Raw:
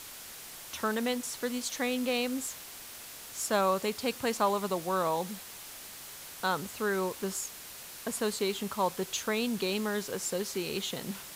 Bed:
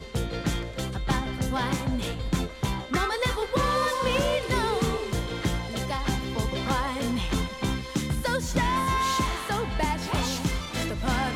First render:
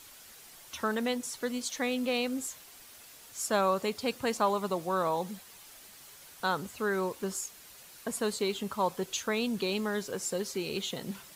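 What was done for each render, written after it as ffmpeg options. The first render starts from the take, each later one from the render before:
ffmpeg -i in.wav -af "afftdn=noise_reduction=8:noise_floor=-46" out.wav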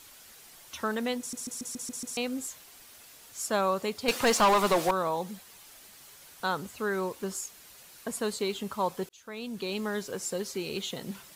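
ffmpeg -i in.wav -filter_complex "[0:a]asettb=1/sr,asplit=3[link_01][link_02][link_03];[link_01]atrim=end=4.084[link_04];[link_02]atrim=start=4.08:end=4.91,asetpts=PTS-STARTPTS,afade=type=in:duration=0.004:curve=qsin,afade=type=out:start_time=0.826:duration=0.004:curve=qsin,asplit=2[link_05][link_06];[link_06]highpass=frequency=720:poles=1,volume=23dB,asoftclip=type=tanh:threshold=-14.5dB[link_07];[link_05][link_07]amix=inputs=2:normalize=0,lowpass=frequency=6700:poles=1,volume=-6dB[link_08];[link_03]atrim=start=4.906[link_09];[link_04][link_08]acrossfade=duration=0.004:curve1=hsin:curve2=qsin[link_10];[link_10][link_09]acrossfade=duration=0.004:curve1=qsin:curve2=hsin,asplit=9[link_11][link_12][link_13][link_14][link_15][link_16][link_17][link_18][link_19];[link_11]atrim=end=1.332[link_20];[link_12]atrim=start=1.188:end=1.332[link_21];[link_13]atrim=start=1.188:end=1.332[link_22];[link_14]atrim=start=1.188:end=1.332[link_23];[link_15]atrim=start=1.188:end=1.332[link_24];[link_16]atrim=start=1.188:end=1.332[link_25];[link_17]atrim=start=1.188:end=1.332[link_26];[link_18]atrim=start=2.168:end=9.09,asetpts=PTS-STARTPTS,afade=type=out:start_time=6.918:duration=0.004:curve=hsin[link_27];[link_19]atrim=start=9.09,asetpts=PTS-STARTPTS,afade=type=in:duration=0.78[link_28];[link_20][link_21]acrossfade=duration=0.004:curve1=hsin:curve2=hsin[link_29];[link_29][link_22]acrossfade=duration=0.004:curve1=hsin:curve2=hsin[link_30];[link_30][link_23]acrossfade=duration=0.004:curve1=hsin:curve2=hsin[link_31];[link_31][link_24]acrossfade=duration=0.004:curve1=hsin:curve2=hsin[link_32];[link_32][link_25]acrossfade=duration=0.004:curve1=hsin:curve2=hsin[link_33];[link_33][link_26]acrossfade=duration=0.004:curve1=hsin:curve2=hsin[link_34];[link_27][link_28]concat=n=2:v=0:a=1[link_35];[link_34][link_35]acrossfade=duration=0.004:curve1=hsin:curve2=hsin" out.wav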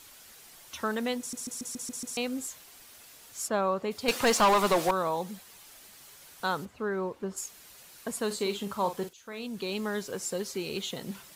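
ffmpeg -i in.wav -filter_complex "[0:a]asplit=3[link_01][link_02][link_03];[link_01]afade=type=out:start_time=3.47:duration=0.02[link_04];[link_02]lowpass=frequency=1800:poles=1,afade=type=in:start_time=3.47:duration=0.02,afade=type=out:start_time=3.9:duration=0.02[link_05];[link_03]afade=type=in:start_time=3.9:duration=0.02[link_06];[link_04][link_05][link_06]amix=inputs=3:normalize=0,asplit=3[link_07][link_08][link_09];[link_07]afade=type=out:start_time=6.64:duration=0.02[link_10];[link_08]lowpass=frequency=1200:poles=1,afade=type=in:start_time=6.64:duration=0.02,afade=type=out:start_time=7.36:duration=0.02[link_11];[link_09]afade=type=in:start_time=7.36:duration=0.02[link_12];[link_10][link_11][link_12]amix=inputs=3:normalize=0,asettb=1/sr,asplit=3[link_13][link_14][link_15];[link_13]atrim=end=8.264[link_16];[link_14]atrim=start=8.26:end=9.47,asetpts=PTS-STARTPTS,afade=type=in:duration=0.004:curve=qsin,afade=type=out:start_time=1.206:duration=0.004:curve=qsin,asplit=2[link_17][link_18];[link_18]adelay=45,volume=-9.5dB[link_19];[link_17][link_19]amix=inputs=2:normalize=0,atrim=end_sample=53361[link_20];[link_15]atrim=start=9.466[link_21];[link_16][link_20]acrossfade=duration=0.004:curve1=hsin:curve2=qsin[link_22];[link_22][link_21]acrossfade=duration=0.004:curve1=qsin:curve2=hsin" out.wav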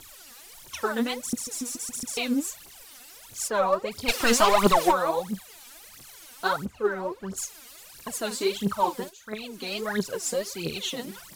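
ffmpeg -i in.wav -af "aphaser=in_gain=1:out_gain=1:delay=4.3:decay=0.8:speed=1.5:type=triangular" out.wav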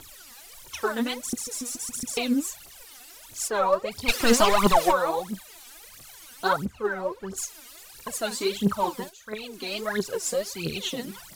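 ffmpeg -i in.wav -af "aphaser=in_gain=1:out_gain=1:delay=3.4:decay=0.37:speed=0.46:type=triangular" out.wav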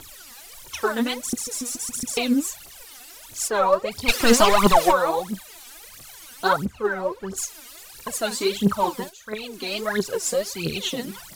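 ffmpeg -i in.wav -af "volume=3.5dB" out.wav

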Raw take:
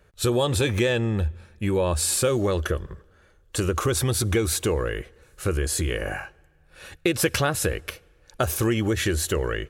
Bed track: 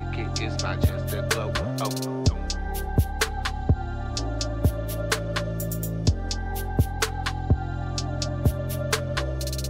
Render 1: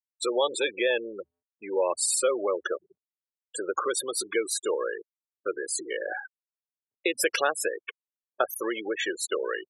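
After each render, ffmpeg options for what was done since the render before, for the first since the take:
ffmpeg -i in.wav -af "afftfilt=real='re*gte(hypot(re,im),0.0708)':imag='im*gte(hypot(re,im),0.0708)':win_size=1024:overlap=0.75,highpass=frequency=420:width=0.5412,highpass=frequency=420:width=1.3066" out.wav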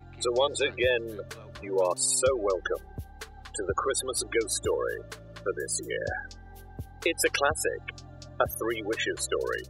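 ffmpeg -i in.wav -i bed.wav -filter_complex "[1:a]volume=-18dB[link_01];[0:a][link_01]amix=inputs=2:normalize=0" out.wav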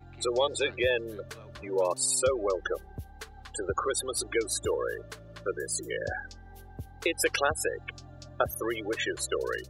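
ffmpeg -i in.wav -af "volume=-1.5dB" out.wav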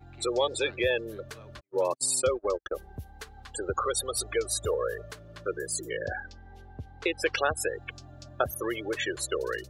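ffmpeg -i in.wav -filter_complex "[0:a]asplit=3[link_01][link_02][link_03];[link_01]afade=type=out:start_time=1.59:duration=0.02[link_04];[link_02]agate=range=-50dB:threshold=-31dB:ratio=16:release=100:detection=peak,afade=type=in:start_time=1.59:duration=0.02,afade=type=out:start_time=2.74:duration=0.02[link_05];[link_03]afade=type=in:start_time=2.74:duration=0.02[link_06];[link_04][link_05][link_06]amix=inputs=3:normalize=0,asettb=1/sr,asplit=3[link_07][link_08][link_09];[link_07]atrim=end=3.794[link_10];[link_08]atrim=start=3.79:end=5.11,asetpts=PTS-STARTPTS,afade=type=in:duration=0.004:curve=qsin,afade=type=out:start_time=1.316:duration=0.004:curve=qsin,aecho=1:1:1.6:0.57,atrim=end_sample=58212[link_11];[link_09]atrim=start=5.106[link_12];[link_10][link_11]acrossfade=duration=0.004:curve1=hsin:curve2=qsin[link_13];[link_13][link_12]acrossfade=duration=0.004:curve1=qsin:curve2=hsin,asettb=1/sr,asplit=3[link_14][link_15][link_16];[link_14]atrim=end=5.894[link_17];[link_15]atrim=start=5.89:end=7.57,asetpts=PTS-STARTPTS,afade=type=in:duration=0.004:curve=qsin,afade=type=out:start_time=1.676:duration=0.004:curve=qsin,lowpass=4600[link_18];[link_16]atrim=start=7.566[link_19];[link_17][link_18]acrossfade=duration=0.004:curve1=hsin:curve2=qsin[link_20];[link_20][link_19]acrossfade=duration=0.004:curve1=qsin:curve2=hsin" out.wav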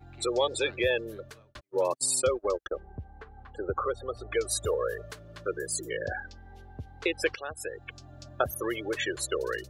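ffmpeg -i in.wav -filter_complex "[0:a]asettb=1/sr,asplit=3[link_01][link_02][link_03];[link_01]atrim=end=2.674[link_04];[link_02]atrim=start=2.67:end=4.32,asetpts=PTS-STARTPTS,afade=type=in:duration=0.004:curve=qsin,afade=type=out:start_time=1.646:duration=0.004:curve=qsin,lowpass=1400[link_05];[link_03]atrim=start=4.316[link_06];[link_04][link_05]acrossfade=duration=0.004:curve1=hsin:curve2=qsin[link_07];[link_07][link_06]acrossfade=duration=0.004:curve1=qsin:curve2=hsin,asplit=3[link_08][link_09][link_10];[link_08]atrim=end=1.55,asetpts=PTS-STARTPTS,afade=type=out:start_time=0.93:duration=0.62:curve=qsin[link_11];[link_09]atrim=start=1.55:end=7.35,asetpts=PTS-STARTPTS,afade=type=in:duration=0.004:curve=hsin,afade=type=out:start_time=5.796:duration=0.004:curve=hsin:silence=0.158489[link_12];[link_10]atrim=start=7.35,asetpts=PTS-STARTPTS,afade=type=in:duration=0.84:silence=0.158489[link_13];[link_11][link_12][link_13]concat=n=3:v=0:a=1" out.wav

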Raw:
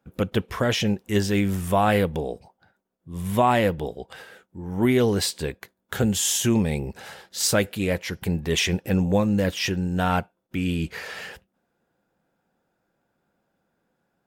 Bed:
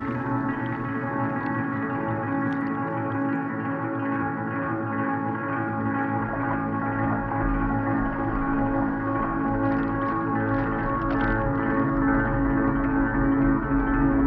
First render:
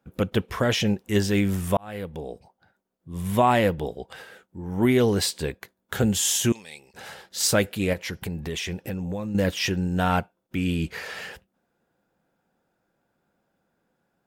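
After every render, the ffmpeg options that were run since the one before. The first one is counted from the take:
ffmpeg -i in.wav -filter_complex "[0:a]asettb=1/sr,asplit=3[link_01][link_02][link_03];[link_01]atrim=end=6.524[link_04];[link_02]atrim=start=6.52:end=6.94,asetpts=PTS-STARTPTS,afade=type=in:duration=0.004:curve=qsin,afade=type=out:start_time=0.416:duration=0.004:curve=qsin,bandpass=frequency=5300:width_type=q:width=0.92[link_05];[link_03]atrim=start=6.936[link_06];[link_04][link_05]acrossfade=duration=0.004:curve1=hsin:curve2=qsin[link_07];[link_07][link_06]acrossfade=duration=0.004:curve1=qsin:curve2=hsin,asettb=1/sr,asplit=3[link_08][link_09][link_10];[link_08]atrim=end=7.934[link_11];[link_09]atrim=start=7.93:end=9.35,asetpts=PTS-STARTPTS,afade=type=in:duration=0.004:curve=qsin,afade=type=out:start_time=1.416:duration=0.004:curve=qsin,acompressor=threshold=-27dB:ratio=6:attack=3.2:release=140:knee=1:detection=peak[link_12];[link_10]atrim=start=9.346[link_13];[link_11][link_12]acrossfade=duration=0.004:curve1=hsin:curve2=qsin[link_14];[link_14][link_13]acrossfade=duration=0.004:curve1=qsin:curve2=hsin,asplit=2[link_15][link_16];[link_15]atrim=end=1.77,asetpts=PTS-STARTPTS,afade=type=out:start_time=1.766:duration=0.004:curve=hsin[link_17];[link_16]atrim=start=1.77,asetpts=PTS-STARTPTS,afade=type=in:duration=1.45:curve=qsin[link_18];[link_17][link_18]concat=n=2:v=0:a=1" out.wav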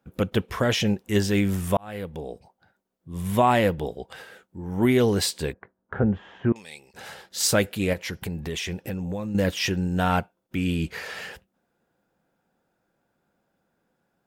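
ffmpeg -i in.wav -filter_complex "[0:a]asettb=1/sr,asplit=3[link_01][link_02][link_03];[link_01]atrim=end=5.534[link_04];[link_02]atrim=start=5.53:end=6.56,asetpts=PTS-STARTPTS,afade=type=in:duration=0.004:curve=qsin,afade=type=out:start_time=1.026:duration=0.004:curve=qsin,lowpass=frequency=1600:width=0.5412,lowpass=frequency=1600:width=1.3066[link_05];[link_03]atrim=start=6.556[link_06];[link_04][link_05]acrossfade=duration=0.004:curve1=hsin:curve2=qsin[link_07];[link_07][link_06]acrossfade=duration=0.004:curve1=qsin:curve2=hsin" out.wav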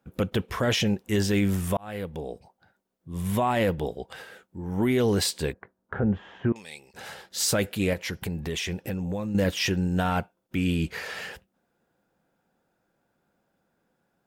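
ffmpeg -i in.wav -af "alimiter=limit=-15.5dB:level=0:latency=1:release=13" out.wav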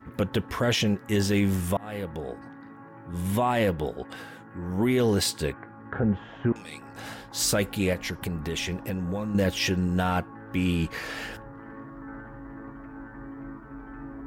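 ffmpeg -i in.wav -i bed.wav -filter_complex "[1:a]volume=-19dB[link_01];[0:a][link_01]amix=inputs=2:normalize=0" out.wav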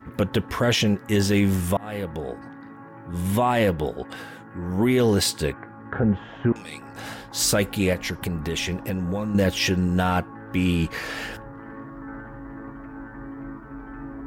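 ffmpeg -i in.wav -af "volume=3.5dB" out.wav

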